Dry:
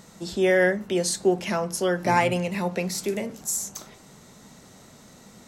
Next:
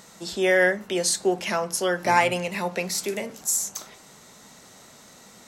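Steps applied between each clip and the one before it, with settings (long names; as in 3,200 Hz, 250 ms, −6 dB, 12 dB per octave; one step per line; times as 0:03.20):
low-shelf EQ 370 Hz −11 dB
level +3.5 dB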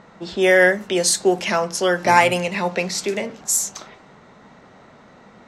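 low-pass that shuts in the quiet parts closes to 1,700 Hz, open at −19.5 dBFS
level +5.5 dB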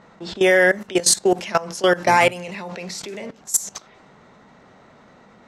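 output level in coarse steps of 18 dB
level +4 dB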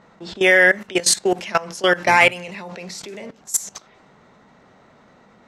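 dynamic equaliser 2,300 Hz, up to +8 dB, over −33 dBFS, Q 0.91
level −2 dB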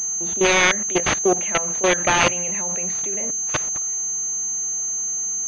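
phase distortion by the signal itself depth 0.42 ms
switching amplifier with a slow clock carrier 6,300 Hz
level +1 dB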